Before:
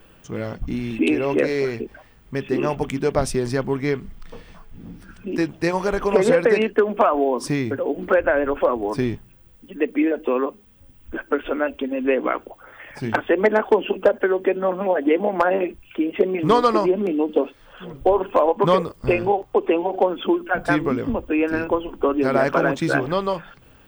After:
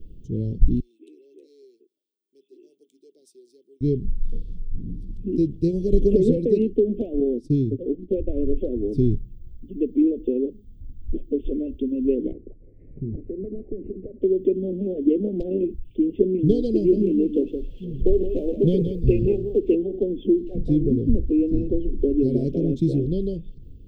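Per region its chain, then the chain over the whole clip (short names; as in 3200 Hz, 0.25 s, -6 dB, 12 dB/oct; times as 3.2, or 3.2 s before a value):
0.8–3.81 ladder high-pass 300 Hz, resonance 55% + differentiator
5.92–6.37 bell 1300 Hz +4.5 dB + three-band squash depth 70%
7.2–8.32 expander -23 dBFS + Butterworth band-stop 1500 Hz, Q 1.3
12.32–14.22 CVSD 16 kbps + elliptic low-pass 2100 Hz + compressor 4:1, threshold -28 dBFS
16.75–19.75 G.711 law mismatch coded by mu + band shelf 1700 Hz +8.5 dB + echo 0.169 s -8 dB
20.38–22.16 G.711 law mismatch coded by mu + high shelf 4300 Hz -10 dB + mismatched tape noise reduction encoder only
whole clip: elliptic band-stop 410–3600 Hz, stop band 80 dB; tilt -4 dB/oct; gain -5 dB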